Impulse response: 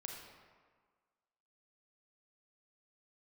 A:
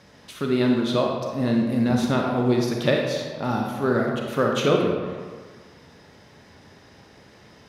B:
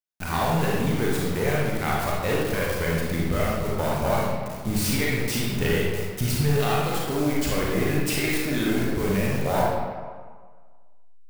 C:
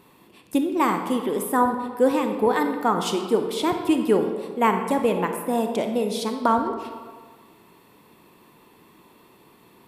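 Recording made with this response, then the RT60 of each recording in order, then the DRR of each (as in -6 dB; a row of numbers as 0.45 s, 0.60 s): A; 1.6 s, 1.6 s, 1.6 s; 0.0 dB, -4.5 dB, 5.0 dB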